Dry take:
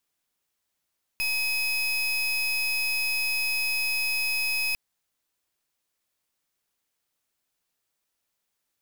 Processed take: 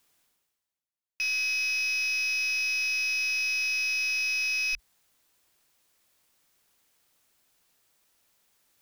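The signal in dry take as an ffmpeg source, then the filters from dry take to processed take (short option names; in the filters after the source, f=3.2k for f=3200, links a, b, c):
-f lavfi -i "aevalsrc='0.0473*(2*lt(mod(2540*t,1),0.33)-1)':d=3.55:s=44100"
-af "afwtdn=0.0224,areverse,acompressor=mode=upward:threshold=-47dB:ratio=2.5,areverse"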